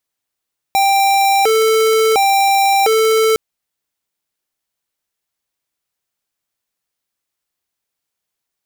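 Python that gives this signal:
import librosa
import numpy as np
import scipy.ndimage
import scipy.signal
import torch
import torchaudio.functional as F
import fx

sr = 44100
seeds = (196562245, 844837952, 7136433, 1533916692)

y = fx.siren(sr, length_s=2.61, kind='hi-lo', low_hz=442.0, high_hz=787.0, per_s=0.71, wave='square', level_db=-12.5)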